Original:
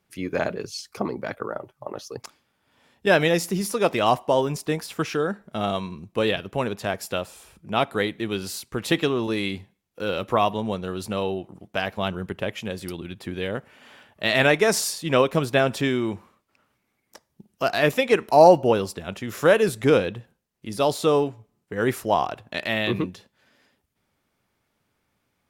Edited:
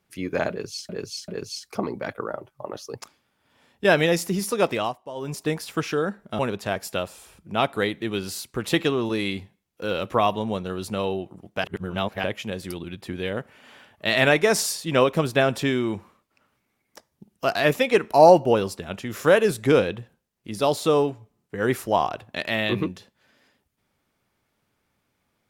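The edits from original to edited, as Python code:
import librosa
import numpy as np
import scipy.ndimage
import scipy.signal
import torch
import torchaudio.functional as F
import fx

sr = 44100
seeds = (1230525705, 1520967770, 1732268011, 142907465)

y = fx.edit(x, sr, fx.repeat(start_s=0.5, length_s=0.39, count=3),
    fx.fade_down_up(start_s=3.81, length_s=0.91, db=-16.0, fade_s=0.35, curve='qsin'),
    fx.cut(start_s=5.61, length_s=0.96),
    fx.reverse_span(start_s=11.82, length_s=0.6), tone=tone)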